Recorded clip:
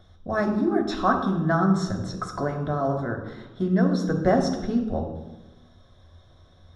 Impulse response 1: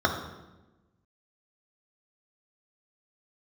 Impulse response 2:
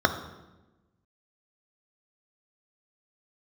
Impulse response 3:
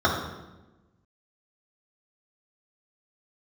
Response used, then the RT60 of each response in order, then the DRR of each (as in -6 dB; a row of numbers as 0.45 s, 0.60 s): 1; 1.1 s, 1.1 s, 1.1 s; 1.0 dB, 6.0 dB, -4.0 dB